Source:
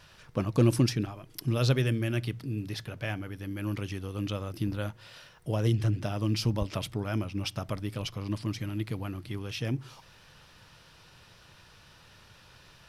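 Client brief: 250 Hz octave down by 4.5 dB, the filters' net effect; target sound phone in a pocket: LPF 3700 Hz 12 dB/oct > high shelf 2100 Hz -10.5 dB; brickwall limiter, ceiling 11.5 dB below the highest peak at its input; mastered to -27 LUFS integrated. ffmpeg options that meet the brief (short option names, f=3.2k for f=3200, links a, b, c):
-af "equalizer=f=250:t=o:g=-6,alimiter=level_in=2dB:limit=-24dB:level=0:latency=1,volume=-2dB,lowpass=3.7k,highshelf=f=2.1k:g=-10.5,volume=10.5dB"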